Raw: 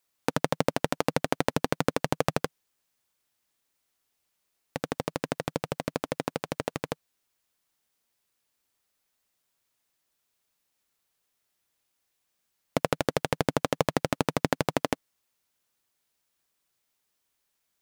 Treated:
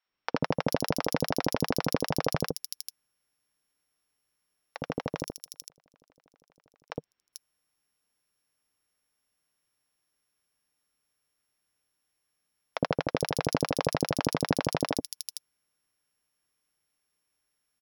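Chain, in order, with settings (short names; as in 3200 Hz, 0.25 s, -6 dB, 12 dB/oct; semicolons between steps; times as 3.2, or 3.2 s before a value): sample sorter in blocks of 8 samples; 5.22–6.89 flipped gate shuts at -20 dBFS, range -37 dB; three bands offset in time mids, lows, highs 60/440 ms, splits 670/4300 Hz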